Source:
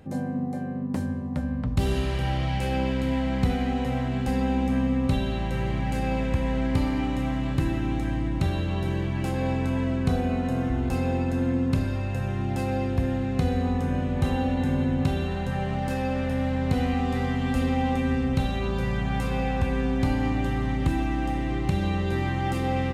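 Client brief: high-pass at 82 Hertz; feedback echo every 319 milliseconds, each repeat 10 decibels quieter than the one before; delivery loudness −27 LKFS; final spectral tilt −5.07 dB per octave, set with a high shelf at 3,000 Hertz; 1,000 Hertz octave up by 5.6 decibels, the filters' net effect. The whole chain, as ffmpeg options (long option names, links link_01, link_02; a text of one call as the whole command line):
ffmpeg -i in.wav -af "highpass=82,equalizer=frequency=1000:width_type=o:gain=8.5,highshelf=frequency=3000:gain=-4,aecho=1:1:319|638|957|1276:0.316|0.101|0.0324|0.0104,volume=-0.5dB" out.wav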